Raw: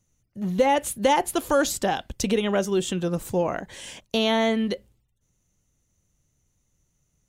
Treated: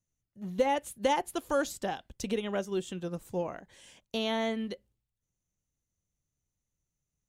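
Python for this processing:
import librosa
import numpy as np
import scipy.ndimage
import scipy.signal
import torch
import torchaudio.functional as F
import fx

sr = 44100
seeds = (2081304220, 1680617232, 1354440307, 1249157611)

y = fx.upward_expand(x, sr, threshold_db=-34.0, expansion=1.5)
y = y * 10.0 ** (-6.0 / 20.0)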